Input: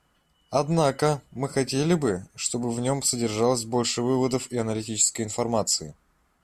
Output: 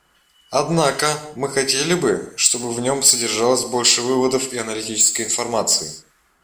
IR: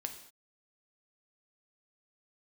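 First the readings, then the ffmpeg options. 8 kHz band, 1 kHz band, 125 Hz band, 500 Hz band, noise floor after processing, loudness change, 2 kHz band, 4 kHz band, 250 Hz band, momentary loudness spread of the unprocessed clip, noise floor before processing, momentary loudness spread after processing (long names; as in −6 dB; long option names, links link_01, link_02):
+10.0 dB, +6.0 dB, −1.0 dB, +5.0 dB, −60 dBFS, +7.5 dB, +11.5 dB, +11.5 dB, +2.5 dB, 6 LU, −68 dBFS, 9 LU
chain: -filter_complex "[0:a]tiltshelf=frequency=780:gain=-9.5,asoftclip=type=tanh:threshold=-6dB,asplit=2[link_01][link_02];[1:a]atrim=start_sample=2205,lowshelf=frequency=390:gain=12[link_03];[link_02][link_03]afir=irnorm=-1:irlink=0,volume=4dB[link_04];[link_01][link_04]amix=inputs=2:normalize=0,acrossover=split=1200[link_05][link_06];[link_05]aeval=exprs='val(0)*(1-0.5/2+0.5/2*cos(2*PI*1.4*n/s))':channel_layout=same[link_07];[link_06]aeval=exprs='val(0)*(1-0.5/2-0.5/2*cos(2*PI*1.4*n/s))':channel_layout=same[link_08];[link_07][link_08]amix=inputs=2:normalize=0,equalizer=frequency=100:width_type=o:width=0.67:gain=-11,equalizer=frequency=400:width_type=o:width=0.67:gain=5,equalizer=frequency=1600:width_type=o:width=0.67:gain=3,volume=-2dB"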